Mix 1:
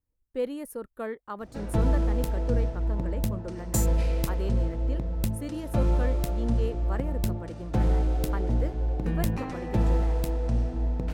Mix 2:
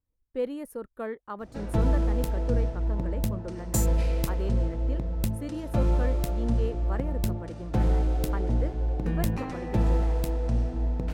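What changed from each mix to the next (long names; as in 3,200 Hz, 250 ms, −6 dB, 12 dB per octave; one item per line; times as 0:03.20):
speech: add high-shelf EQ 3,800 Hz −6 dB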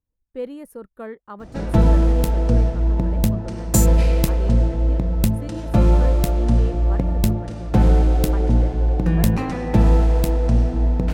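background +9.0 dB
master: add parametric band 190 Hz +4 dB 0.4 octaves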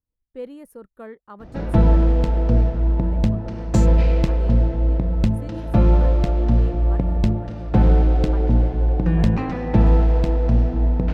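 speech −4.0 dB
background: add high-frequency loss of the air 170 metres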